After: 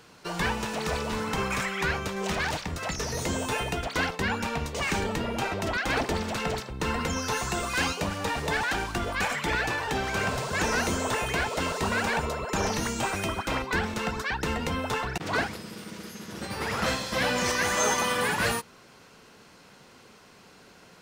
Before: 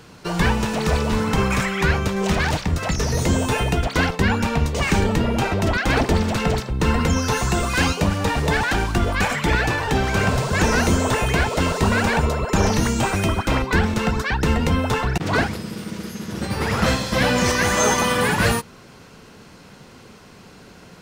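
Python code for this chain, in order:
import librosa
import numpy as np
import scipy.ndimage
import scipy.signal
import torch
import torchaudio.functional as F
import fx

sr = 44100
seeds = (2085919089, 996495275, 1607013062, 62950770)

y = fx.low_shelf(x, sr, hz=270.0, db=-9.5)
y = y * 10.0 ** (-5.5 / 20.0)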